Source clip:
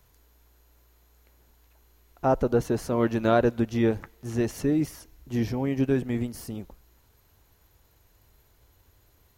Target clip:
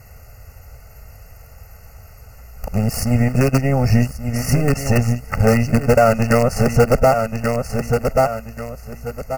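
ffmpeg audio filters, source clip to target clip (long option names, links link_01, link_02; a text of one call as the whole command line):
ffmpeg -i in.wav -filter_complex "[0:a]areverse,highshelf=frequency=7500:gain=-6,asplit=2[link_01][link_02];[link_02]acrusher=bits=4:dc=4:mix=0:aa=0.000001,volume=-6dB[link_03];[link_01][link_03]amix=inputs=2:normalize=0,asuperstop=centerf=3500:order=20:qfactor=2.5,aecho=1:1:1133|2266|3399:0.237|0.0498|0.0105,acompressor=threshold=-32dB:ratio=2.5,aecho=1:1:1.5:0.96,alimiter=level_in=17.5dB:limit=-1dB:release=50:level=0:latency=1,volume=-1.5dB" out.wav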